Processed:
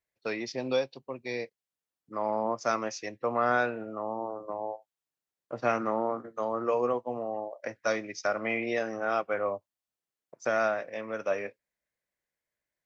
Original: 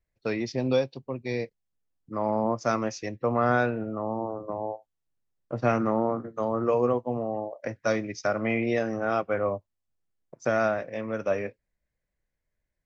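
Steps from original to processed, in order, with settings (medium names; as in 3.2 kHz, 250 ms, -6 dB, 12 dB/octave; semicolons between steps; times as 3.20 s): high-pass 560 Hz 6 dB/octave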